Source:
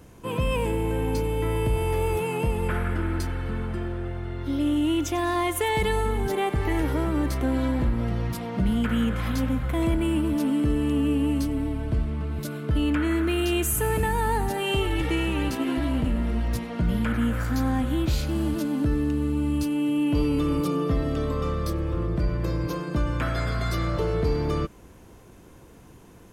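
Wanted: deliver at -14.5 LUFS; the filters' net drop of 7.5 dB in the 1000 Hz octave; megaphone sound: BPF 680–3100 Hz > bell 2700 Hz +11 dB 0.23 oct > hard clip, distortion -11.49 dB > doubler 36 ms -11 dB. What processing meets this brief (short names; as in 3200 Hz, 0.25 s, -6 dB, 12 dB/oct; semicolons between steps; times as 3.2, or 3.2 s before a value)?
BPF 680–3100 Hz; bell 1000 Hz -8 dB; bell 2700 Hz +11 dB 0.23 oct; hard clip -30 dBFS; doubler 36 ms -11 dB; gain +21 dB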